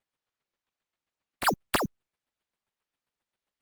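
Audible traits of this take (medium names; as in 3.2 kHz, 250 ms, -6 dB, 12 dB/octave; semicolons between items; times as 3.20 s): chopped level 7.5 Hz, depth 65%, duty 20%; aliases and images of a low sample rate 6.2 kHz, jitter 0%; Opus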